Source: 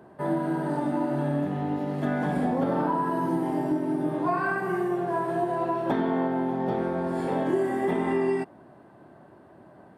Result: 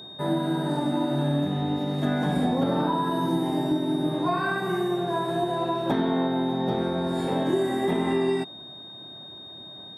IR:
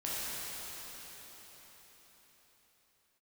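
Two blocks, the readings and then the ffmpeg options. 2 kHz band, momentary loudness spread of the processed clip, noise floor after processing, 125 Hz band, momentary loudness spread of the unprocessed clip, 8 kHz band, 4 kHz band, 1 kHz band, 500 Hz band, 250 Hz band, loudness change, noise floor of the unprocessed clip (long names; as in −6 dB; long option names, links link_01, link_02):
0.0 dB, 15 LU, −43 dBFS, +3.5 dB, 3 LU, can't be measured, +17.5 dB, 0.0 dB, +0.5 dB, +1.5 dB, +1.5 dB, −52 dBFS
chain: -af "aeval=exprs='val(0)+0.00708*sin(2*PI*3700*n/s)':channel_layout=same,bass=frequency=250:gain=4,treble=frequency=4000:gain=6"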